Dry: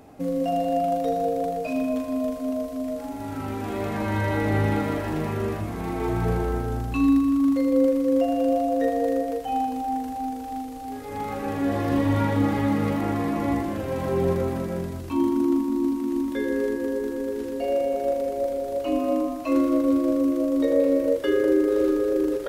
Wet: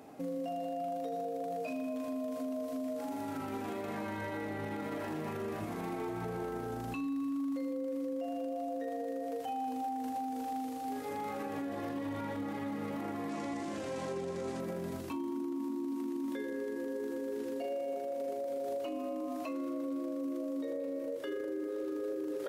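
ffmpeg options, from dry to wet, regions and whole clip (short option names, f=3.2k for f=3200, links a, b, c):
-filter_complex "[0:a]asettb=1/sr,asplit=3[a][b][c];[a]atrim=end=13.294[d];[b]atrim=start=13.29:end=14.6,asetpts=PTS-STARTPTS,afade=t=in:d=0.004:c=qsin,afade=t=out:st=1.306:d=0.004:c=qsin,lowpass=f=7.4k:w=0.5412,lowpass=f=7.4k:w=1.3066,aemphasis=mode=production:type=75fm[e];[c]atrim=start=14.596[f];[d][e]acrossfade=d=0.004:c1=hsin:c2=qsin[g];[g][f]acrossfade=d=0.004:c1=qsin:c2=hsin,highpass=170,acompressor=threshold=-27dB:ratio=6,alimiter=level_in=3.5dB:limit=-24dB:level=0:latency=1:release=34,volume=-3.5dB,volume=-3dB"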